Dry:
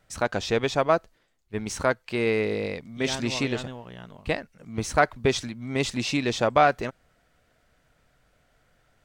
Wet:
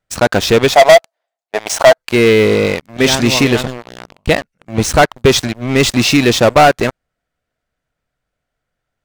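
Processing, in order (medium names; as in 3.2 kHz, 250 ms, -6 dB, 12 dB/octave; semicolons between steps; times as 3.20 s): 0.73–1.98 s: resonant high-pass 680 Hz, resonance Q 7.3; waveshaping leveller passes 5; trim -2 dB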